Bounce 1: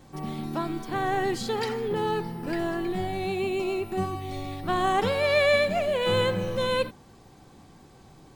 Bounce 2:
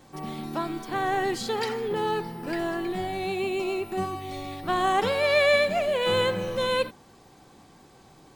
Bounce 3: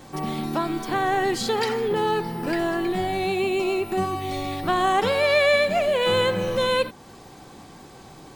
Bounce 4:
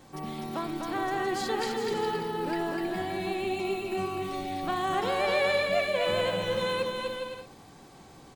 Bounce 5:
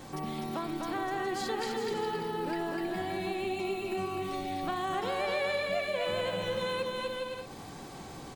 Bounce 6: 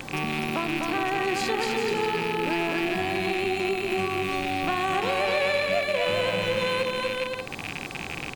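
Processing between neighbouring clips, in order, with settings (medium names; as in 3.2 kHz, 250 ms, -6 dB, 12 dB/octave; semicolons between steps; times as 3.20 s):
bass shelf 200 Hz -8.5 dB; trim +1.5 dB
compression 1.5:1, threshold -36 dBFS, peak gain reduction 7 dB; trim +8.5 dB
bouncing-ball echo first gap 250 ms, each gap 0.65×, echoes 5; trim -8.5 dB
compression 2:1, threshold -46 dBFS, peak gain reduction 13 dB; trim +7 dB
rattle on loud lows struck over -47 dBFS, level -26 dBFS; trim +6.5 dB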